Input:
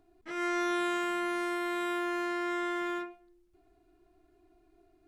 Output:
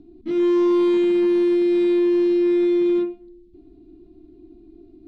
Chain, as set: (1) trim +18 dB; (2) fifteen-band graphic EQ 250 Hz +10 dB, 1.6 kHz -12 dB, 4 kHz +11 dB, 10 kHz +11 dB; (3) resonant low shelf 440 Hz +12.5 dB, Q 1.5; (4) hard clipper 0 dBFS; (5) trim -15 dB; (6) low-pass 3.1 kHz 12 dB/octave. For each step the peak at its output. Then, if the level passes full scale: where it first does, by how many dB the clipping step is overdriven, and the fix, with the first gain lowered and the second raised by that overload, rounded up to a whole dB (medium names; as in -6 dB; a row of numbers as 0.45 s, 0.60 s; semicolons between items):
-2.5 dBFS, -3.5 dBFS, +6.5 dBFS, 0.0 dBFS, -15.0 dBFS, -15.0 dBFS; step 3, 6.5 dB; step 1 +11 dB, step 5 -8 dB